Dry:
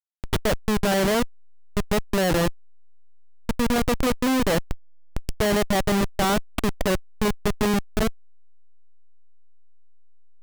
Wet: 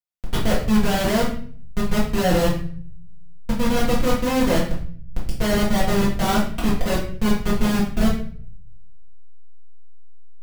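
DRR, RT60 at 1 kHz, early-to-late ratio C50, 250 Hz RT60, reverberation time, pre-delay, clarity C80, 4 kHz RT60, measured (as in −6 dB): −8.0 dB, 0.45 s, 5.0 dB, 0.85 s, 0.50 s, 4 ms, 9.5 dB, 0.45 s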